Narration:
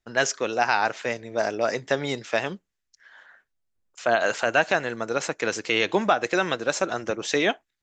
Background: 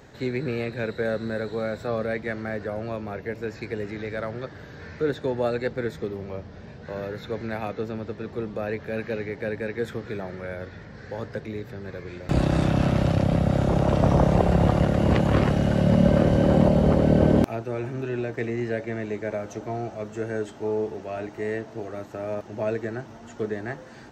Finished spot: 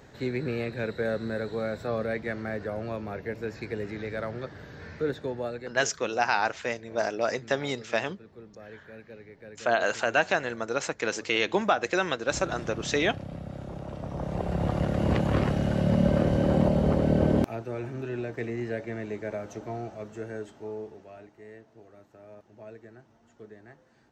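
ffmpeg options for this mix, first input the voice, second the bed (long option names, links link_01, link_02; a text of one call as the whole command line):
ffmpeg -i stem1.wav -i stem2.wav -filter_complex "[0:a]adelay=5600,volume=-3dB[link_01];[1:a]volume=10dB,afade=type=out:start_time=4.89:duration=0.96:silence=0.188365,afade=type=in:start_time=14.11:duration=0.93:silence=0.237137,afade=type=out:start_time=19.68:duration=1.68:silence=0.199526[link_02];[link_01][link_02]amix=inputs=2:normalize=0" out.wav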